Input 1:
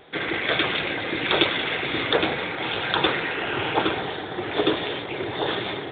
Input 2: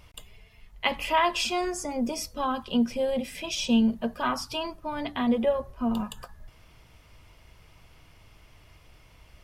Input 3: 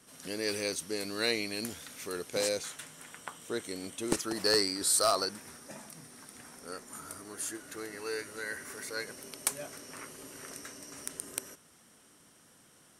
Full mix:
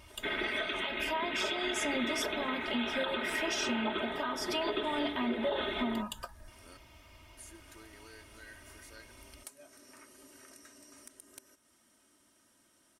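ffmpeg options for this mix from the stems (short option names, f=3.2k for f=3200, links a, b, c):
-filter_complex "[0:a]aecho=1:1:4.7:0.65,adelay=100,volume=-9.5dB[a];[1:a]highpass=f=82:p=1,acompressor=threshold=-30dB:ratio=6,volume=-1dB,asplit=2[b][c];[2:a]acompressor=threshold=-47dB:ratio=2,volume=-8.5dB,asplit=3[d][e][f];[d]atrim=end=6.77,asetpts=PTS-STARTPTS,afade=t=out:st=6.766:d=0.004:c=hsin[g];[e]atrim=start=6.77:end=7.37,asetpts=PTS-STARTPTS,volume=0[h];[f]atrim=start=7.37,asetpts=PTS-STARTPTS,afade=t=in:d=0.004:c=hsin[i];[g][h][i]concat=n=3:v=0:a=1[j];[c]apad=whole_len=573032[k];[j][k]sidechaincompress=threshold=-52dB:ratio=4:attack=6.7:release=336[l];[a][b][l]amix=inputs=3:normalize=0,aecho=1:1:3.2:0.64,alimiter=limit=-23dB:level=0:latency=1:release=207"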